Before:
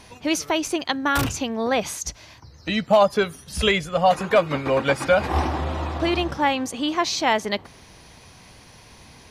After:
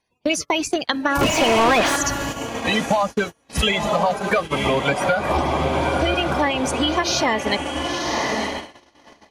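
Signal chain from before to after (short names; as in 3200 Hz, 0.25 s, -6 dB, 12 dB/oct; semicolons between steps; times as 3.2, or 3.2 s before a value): bin magnitudes rounded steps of 30 dB; diffused feedback echo 1.012 s, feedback 50%, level -7.5 dB; compressor 8:1, threshold -23 dBFS, peak gain reduction 11.5 dB; 1.21–1.96 overdrive pedal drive 28 dB, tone 1800 Hz, clips at -15 dBFS; gate -31 dBFS, range -34 dB; gain +7 dB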